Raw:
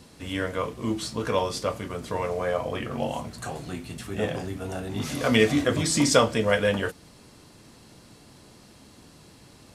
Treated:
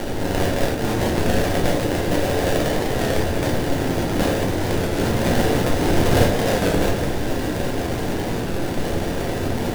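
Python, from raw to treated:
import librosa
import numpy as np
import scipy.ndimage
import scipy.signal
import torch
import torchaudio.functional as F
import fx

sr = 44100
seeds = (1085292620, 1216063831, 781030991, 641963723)

p1 = fx.bin_compress(x, sr, power=0.4)
p2 = fx.rider(p1, sr, range_db=5, speed_s=0.5)
p3 = p1 + F.gain(torch.from_numpy(p2), -1.0).numpy()
p4 = fx.lowpass_res(p3, sr, hz=5700.0, q=5.7)
p5 = fx.sample_hold(p4, sr, seeds[0], rate_hz=1200.0, jitter_pct=20)
p6 = p5 + fx.echo_single(p5, sr, ms=816, db=-10.5, dry=0)
p7 = fx.room_shoebox(p6, sr, seeds[1], volume_m3=67.0, walls='mixed', distance_m=0.87)
p8 = fx.record_warp(p7, sr, rpm=33.33, depth_cents=100.0)
y = F.gain(torch.from_numpy(p8), -13.0).numpy()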